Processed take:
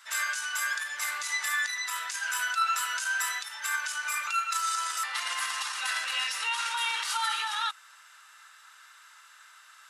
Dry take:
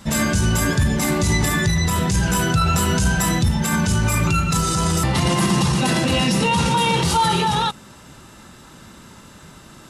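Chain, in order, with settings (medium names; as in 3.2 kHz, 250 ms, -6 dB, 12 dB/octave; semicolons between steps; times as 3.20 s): ladder high-pass 1.2 kHz, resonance 45%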